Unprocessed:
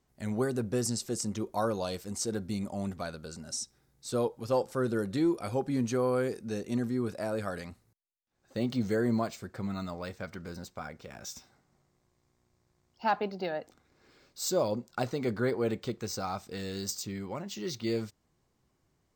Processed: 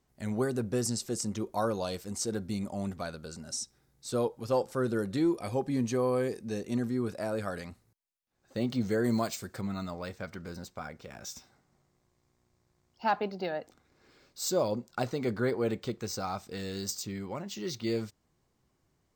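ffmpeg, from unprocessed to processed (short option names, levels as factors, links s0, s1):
-filter_complex "[0:a]asettb=1/sr,asplit=3[s0][s1][s2];[s0]atrim=end=5.354[s3];[s1]atrim=start=5.35:end=6.62,asetpts=PTS-STARTPTS,afade=t=in:d=0.004:c=qsin,afade=t=out:st=1.266:d=0.004:c=qsin,asuperstop=centerf=1400:order=4:qfactor=7.3[s4];[s2]atrim=start=6.616[s5];[s3][s4]acrossfade=d=0.004:c1=hsin:c2=qsin[s6];[s6][s5]acrossfade=d=0.004:c1=qsin:c2=hsin,asettb=1/sr,asplit=3[s7][s8][s9];[s7]atrim=end=9.044[s10];[s8]atrim=start=9.04:end=9.61,asetpts=PTS-STARTPTS,afade=t=in:d=0.004:c=qsin,afade=t=out:st=0.566:d=0.004:c=qsin,highshelf=f=3400:g=11[s11];[s9]atrim=start=9.606[s12];[s10][s11]acrossfade=d=0.004:c1=hsin:c2=qsin[s13];[s13][s12]acrossfade=d=0.004:c1=qsin:c2=hsin"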